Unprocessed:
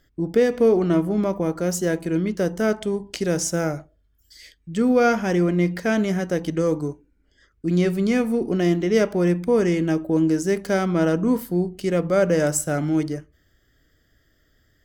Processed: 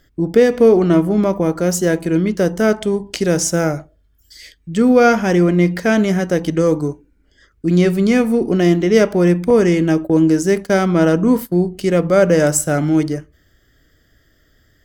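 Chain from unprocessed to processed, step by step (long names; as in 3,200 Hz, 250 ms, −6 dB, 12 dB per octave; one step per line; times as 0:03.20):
0:09.50–0:11.62: noise gate −29 dBFS, range −17 dB
level +6.5 dB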